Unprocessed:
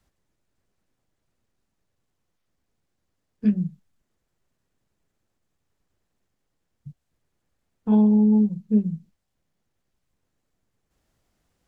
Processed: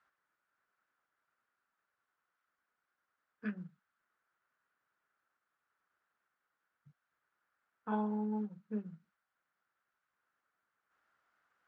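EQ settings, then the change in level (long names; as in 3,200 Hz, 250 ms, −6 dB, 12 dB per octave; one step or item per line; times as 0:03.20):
resonant band-pass 1,400 Hz, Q 4.1
+9.0 dB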